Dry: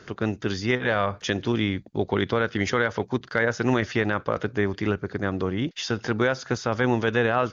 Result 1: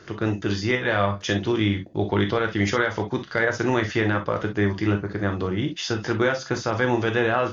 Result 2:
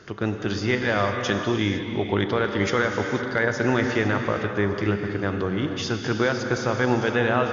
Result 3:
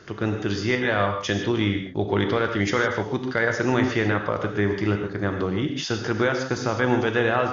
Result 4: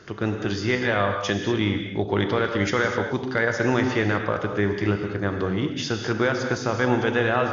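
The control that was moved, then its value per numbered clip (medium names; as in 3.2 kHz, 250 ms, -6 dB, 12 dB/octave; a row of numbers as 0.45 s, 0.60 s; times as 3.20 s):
gated-style reverb, gate: 80 ms, 530 ms, 180 ms, 270 ms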